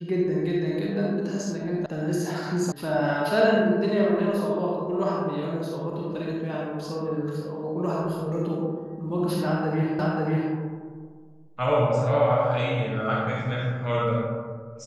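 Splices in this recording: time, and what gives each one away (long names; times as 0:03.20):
0:01.86: cut off before it has died away
0:02.72: cut off before it has died away
0:09.99: the same again, the last 0.54 s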